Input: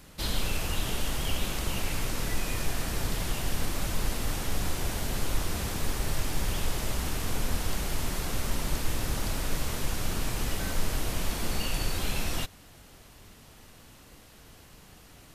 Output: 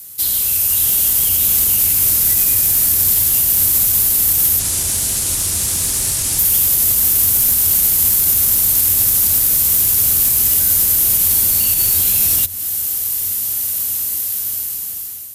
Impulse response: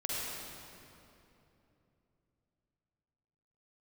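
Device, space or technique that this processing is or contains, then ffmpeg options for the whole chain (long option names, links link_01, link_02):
FM broadcast chain: -filter_complex "[0:a]asettb=1/sr,asplit=3[link_01][link_02][link_03];[link_01]atrim=end=4.594[link_04];[link_02]atrim=start=4.59:end=6.39,asetpts=PTS-STARTPTS,afade=type=in:duration=0.004:curve=qsin,afade=type=out:start_time=1.796:duration=0.004:curve=qsin,lowpass=frequency=10000:width=0.5412,lowpass=frequency=10000:width=1.3066[link_05];[link_03]atrim=start=6.386[link_06];[link_04][link_05]acrossfade=duration=0.004:curve1=hsin:curve2=qsin[link_07];[link_07][link_06]acrossfade=duration=0.004:curve1=qsin:curve2=hsin,highpass=46,dynaudnorm=framelen=580:gausssize=5:maxgain=16dB,acrossover=split=110|360|3800[link_08][link_09][link_10][link_11];[link_08]acompressor=threshold=-26dB:ratio=4[link_12];[link_09]acompressor=threshold=-29dB:ratio=4[link_13];[link_10]acompressor=threshold=-32dB:ratio=4[link_14];[link_11]acompressor=threshold=-36dB:ratio=4[link_15];[link_12][link_13][link_14][link_15]amix=inputs=4:normalize=0,aemphasis=mode=production:type=75fm,alimiter=limit=-12.5dB:level=0:latency=1:release=44,asoftclip=type=hard:threshold=-16.5dB,lowpass=frequency=15000:width=0.5412,lowpass=frequency=15000:width=1.3066,aemphasis=mode=production:type=75fm,equalizer=frequency=91:width=6.2:gain=9.5,volume=-4.5dB"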